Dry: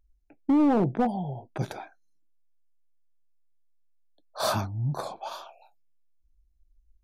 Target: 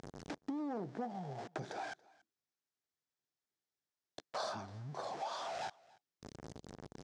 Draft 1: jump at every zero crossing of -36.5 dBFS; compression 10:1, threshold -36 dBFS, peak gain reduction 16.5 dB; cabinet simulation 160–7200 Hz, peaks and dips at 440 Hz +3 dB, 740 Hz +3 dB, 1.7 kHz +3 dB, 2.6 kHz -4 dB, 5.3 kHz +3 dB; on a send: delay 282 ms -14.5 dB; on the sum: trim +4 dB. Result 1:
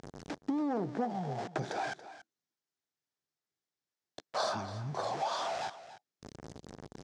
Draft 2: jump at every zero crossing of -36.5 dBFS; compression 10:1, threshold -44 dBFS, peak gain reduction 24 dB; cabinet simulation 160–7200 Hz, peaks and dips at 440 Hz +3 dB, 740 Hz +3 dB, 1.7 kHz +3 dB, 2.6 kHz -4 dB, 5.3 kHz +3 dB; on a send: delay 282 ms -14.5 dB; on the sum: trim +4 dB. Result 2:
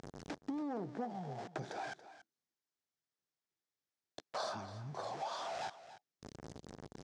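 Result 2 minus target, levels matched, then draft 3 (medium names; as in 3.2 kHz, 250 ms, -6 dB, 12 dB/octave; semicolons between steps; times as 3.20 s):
echo-to-direct +9.5 dB
jump at every zero crossing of -36.5 dBFS; compression 10:1, threshold -44 dBFS, peak gain reduction 24 dB; cabinet simulation 160–7200 Hz, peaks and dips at 440 Hz +3 dB, 740 Hz +3 dB, 1.7 kHz +3 dB, 2.6 kHz -4 dB, 5.3 kHz +3 dB; on a send: delay 282 ms -24 dB; on the sum: trim +4 dB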